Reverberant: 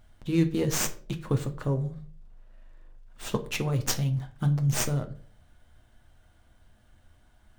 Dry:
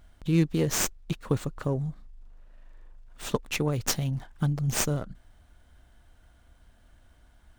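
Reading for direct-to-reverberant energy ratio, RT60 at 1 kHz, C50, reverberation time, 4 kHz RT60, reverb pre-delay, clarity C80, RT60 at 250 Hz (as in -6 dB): 6.0 dB, 0.40 s, 15.0 dB, 0.45 s, 0.30 s, 8 ms, 19.0 dB, 0.50 s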